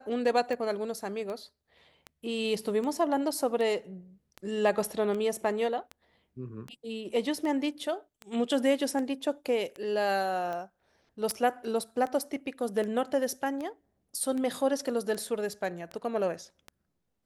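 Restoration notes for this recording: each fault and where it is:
tick 78 rpm
11.31 s: pop -17 dBFS

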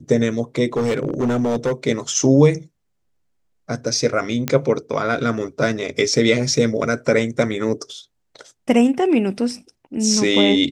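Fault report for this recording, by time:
0.76–1.72 s: clipped -15.5 dBFS
4.48 s: pop -5 dBFS

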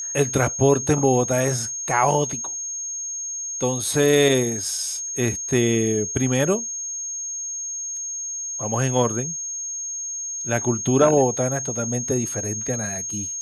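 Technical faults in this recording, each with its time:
whine 6.5 kHz -27 dBFS

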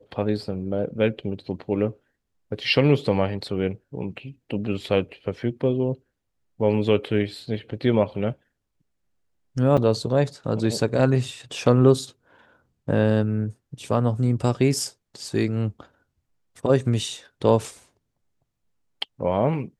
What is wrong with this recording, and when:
9.77–9.78 s: dropout 6.1 ms

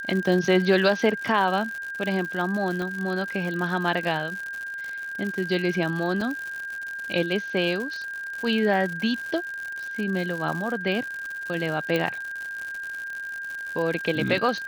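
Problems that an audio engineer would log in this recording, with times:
crackle 130 per s -30 dBFS
whine 1.6 kHz -31 dBFS
2.82 s: pop -19 dBFS
6.21 s: dropout 3.4 ms
11.96 s: pop -12 dBFS

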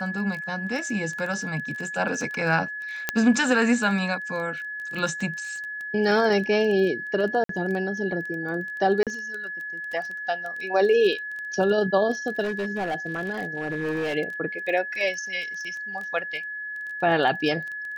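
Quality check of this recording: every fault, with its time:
crackle 17 per s -30 dBFS
whine 1.7 kHz -31 dBFS
3.09 s: pop -6 dBFS
7.44–7.49 s: dropout 53 ms
9.03–9.07 s: dropout 37 ms
12.43–14.15 s: clipped -23.5 dBFS

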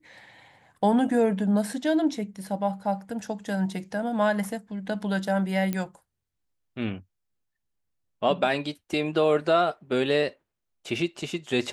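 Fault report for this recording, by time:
5.73 s: pop -15 dBFS

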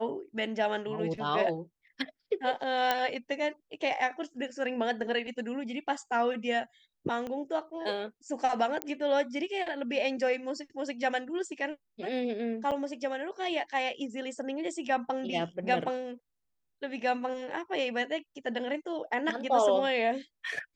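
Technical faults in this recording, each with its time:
2.91 s: pop -12 dBFS
7.27 s: pop -25 dBFS
8.82 s: pop -14 dBFS
12.71–12.72 s: dropout 6.7 ms

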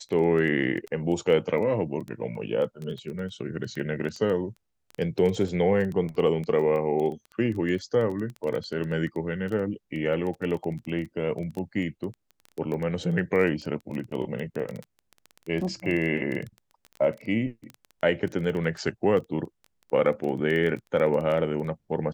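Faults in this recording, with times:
crackle 11 per s -30 dBFS

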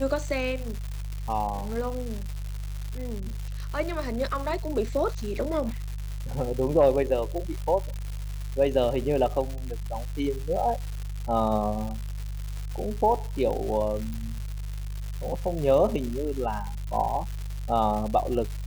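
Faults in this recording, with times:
crackle 300 per s -32 dBFS
hum 50 Hz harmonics 3 -33 dBFS
14.14 s: pop

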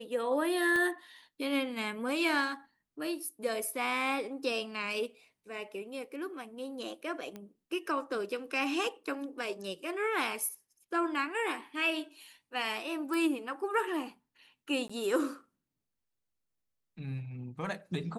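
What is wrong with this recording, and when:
0.76 s: pop -21 dBFS
7.36 s: pop -29 dBFS
13.14 s: pop
14.88–14.89 s: dropout 15 ms

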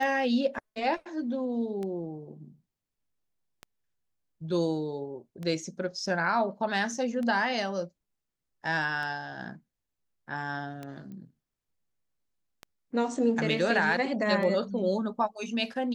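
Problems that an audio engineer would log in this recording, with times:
tick 33 1/3 rpm
11.12 s: pop -34 dBFS

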